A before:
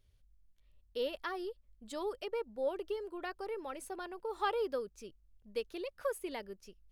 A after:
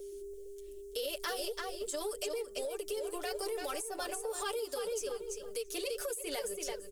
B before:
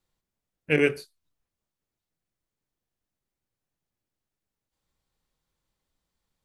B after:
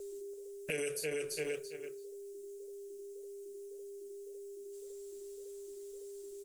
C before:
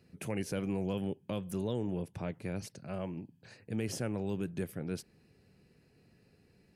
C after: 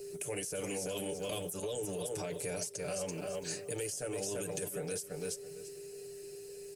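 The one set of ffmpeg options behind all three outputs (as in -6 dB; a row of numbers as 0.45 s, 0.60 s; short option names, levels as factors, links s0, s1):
-filter_complex "[0:a]acrossover=split=700|2700[s0][s1][s2];[s2]crystalizer=i=2.5:c=0[s3];[s0][s1][s3]amix=inputs=3:normalize=0,bandreject=f=60:t=h:w=6,bandreject=f=120:t=h:w=6,aecho=1:1:6.8:0.93,aeval=exprs='val(0)+0.00447*sin(2*PI*400*n/s)':c=same,asplit=2[s4][s5];[s5]adelay=334,lowpass=f=4800:p=1,volume=0.398,asplit=2[s6][s7];[s7]adelay=334,lowpass=f=4800:p=1,volume=0.2,asplit=2[s8][s9];[s9]adelay=334,lowpass=f=4800:p=1,volume=0.2[s10];[s4][s6][s8][s10]amix=inputs=4:normalize=0,asplit=2[s11][s12];[s12]aeval=exprs='sgn(val(0))*max(abs(val(0))-0.00631,0)':c=same,volume=0.355[s13];[s11][s13]amix=inputs=2:normalize=0,equalizer=f=125:t=o:w=1:g=-7,equalizer=f=250:t=o:w=1:g=-12,equalizer=f=500:t=o:w=1:g=6,equalizer=f=1000:t=o:w=1:g=-7,equalizer=f=2000:t=o:w=1:g=-6,equalizer=f=4000:t=o:w=1:g=-10,equalizer=f=8000:t=o:w=1:g=9,acompressor=threshold=0.0251:ratio=12,alimiter=level_in=3.16:limit=0.0631:level=0:latency=1:release=34,volume=0.316,flanger=delay=1.8:depth=5.6:regen=-81:speed=1.8:shape=sinusoidal,acrossover=split=360|2500[s14][s15][s16];[s14]acompressor=threshold=0.00224:ratio=4[s17];[s15]acompressor=threshold=0.00355:ratio=4[s18];[s16]acompressor=threshold=0.00178:ratio=4[s19];[s17][s18][s19]amix=inputs=3:normalize=0,equalizer=f=3800:w=0.43:g=10,volume=3.16"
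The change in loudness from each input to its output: +1.5 LU, -19.0 LU, -1.0 LU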